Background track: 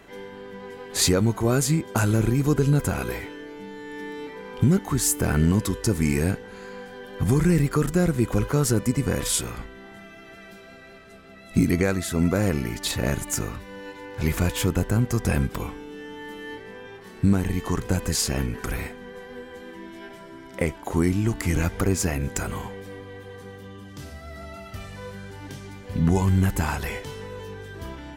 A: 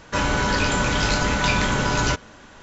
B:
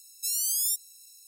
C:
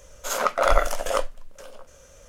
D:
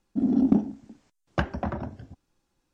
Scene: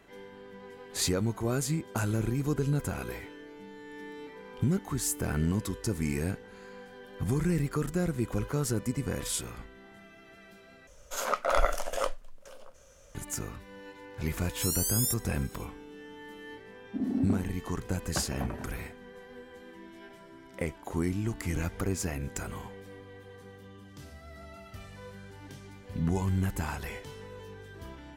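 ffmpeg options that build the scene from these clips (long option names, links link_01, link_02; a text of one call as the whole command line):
ffmpeg -i bed.wav -i cue0.wav -i cue1.wav -i cue2.wav -i cue3.wav -filter_complex "[0:a]volume=-8.5dB,asplit=2[link_01][link_02];[link_01]atrim=end=10.874[link_03];[3:a]atrim=end=2.28,asetpts=PTS-STARTPTS,volume=-6.5dB[link_04];[link_02]atrim=start=13.146[link_05];[2:a]atrim=end=1.27,asetpts=PTS-STARTPTS,volume=-3dB,afade=type=in:duration=0.004:curve=hsin,afade=type=out:start_time=1.266:duration=0.004:curve=hsin,adelay=14380[link_06];[4:a]atrim=end=2.73,asetpts=PTS-STARTPTS,volume=-8dB,afade=type=in:duration=0.004:curve=hsin,afade=type=out:start_time=2.726:duration=0.004:curve=hsin,adelay=16780[link_07];[link_03][link_04]acrossfade=duration=0.004:curve1=hsin:curve2=hsin[link_08];[link_08][link_05]acrossfade=duration=0.004:curve1=hsin:curve2=hsin[link_09];[link_09][link_06][link_07]amix=inputs=3:normalize=0" out.wav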